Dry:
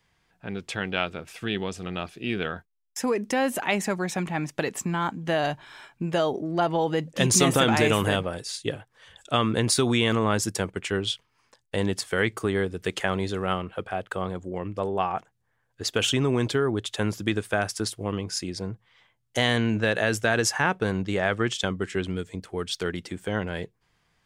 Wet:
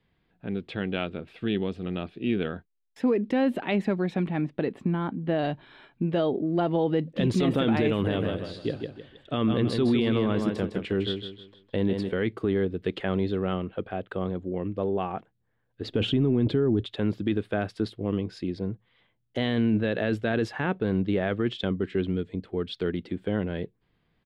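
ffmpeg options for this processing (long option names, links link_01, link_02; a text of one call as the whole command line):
ffmpeg -i in.wav -filter_complex "[0:a]asettb=1/sr,asplit=3[link_01][link_02][link_03];[link_01]atrim=end=4.414[link_04];[link_02]atrim=start=4.41:end=5.39,asetpts=PTS-STARTPTS,afade=type=in:duration=0.004:curve=qsin,afade=type=out:start_time=0.976:duration=0.004:curve=qsin,highshelf=frequency=3000:gain=-9.5[link_05];[link_03]atrim=start=5.386[link_06];[link_04][link_05]acrossfade=duration=0.004:curve1=hsin:curve2=qsin[link_07];[link_07][link_06]acrossfade=duration=0.004:curve1=qsin:curve2=hsin,asplit=3[link_08][link_09][link_10];[link_08]afade=type=out:start_time=8.12:duration=0.02[link_11];[link_09]aecho=1:1:157|314|471|628:0.447|0.147|0.0486|0.0161,afade=type=in:start_time=8.12:duration=0.02,afade=type=out:start_time=12.11:duration=0.02[link_12];[link_10]afade=type=in:start_time=12.11:duration=0.02[link_13];[link_11][link_12][link_13]amix=inputs=3:normalize=0,asettb=1/sr,asplit=3[link_14][link_15][link_16];[link_14]atrim=end=15.844[link_17];[link_15]atrim=start=15.84:end=16.84,asetpts=PTS-STARTPTS,afade=type=in:duration=0.004:curve=qsin,afade=type=out:start_time=0.996:duration=0.004:curve=qsin,lowshelf=frequency=440:gain=10[link_18];[link_16]atrim=start=16.836[link_19];[link_17][link_18]acrossfade=duration=0.004:curve1=hsin:curve2=qsin[link_20];[link_20][link_19]acrossfade=duration=0.004:curve1=qsin:curve2=hsin,firequalizer=gain_entry='entry(120,0);entry(240,5);entry(880,-7);entry(3900,-5);entry(6000,-26)':delay=0.05:min_phase=1,alimiter=limit=-15.5dB:level=0:latency=1:release=15" out.wav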